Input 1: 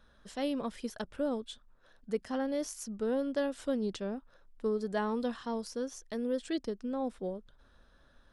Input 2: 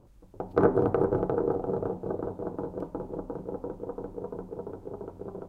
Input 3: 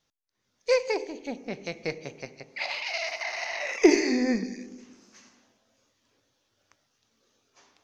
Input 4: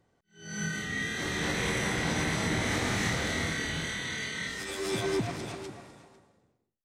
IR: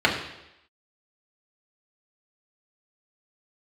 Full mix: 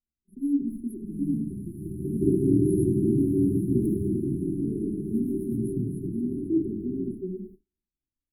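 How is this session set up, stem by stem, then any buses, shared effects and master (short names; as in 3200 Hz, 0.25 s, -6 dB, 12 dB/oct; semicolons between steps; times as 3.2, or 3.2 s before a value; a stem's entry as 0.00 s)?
+2.0 dB, 0.00 s, send -14 dB, dry
-0.5 dB, 1.65 s, send -10 dB, compressor 1.5:1, threshold -32 dBFS, peak gain reduction 6 dB
-7.5 dB, 0.00 s, no send, spectral compressor 2:1
-6.0 dB, 0.55 s, send -4.5 dB, HPF 110 Hz; band shelf 560 Hz -11.5 dB 2.9 oct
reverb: on, RT60 0.85 s, pre-delay 3 ms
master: gate -42 dBFS, range -35 dB; brick-wall FIR band-stop 400–9600 Hz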